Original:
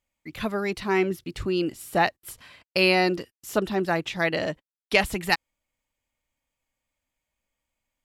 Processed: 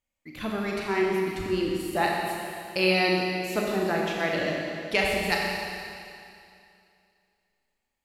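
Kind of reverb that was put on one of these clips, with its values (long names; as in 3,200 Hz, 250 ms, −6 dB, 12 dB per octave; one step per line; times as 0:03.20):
four-comb reverb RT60 2.5 s, combs from 29 ms, DRR −2 dB
level −5 dB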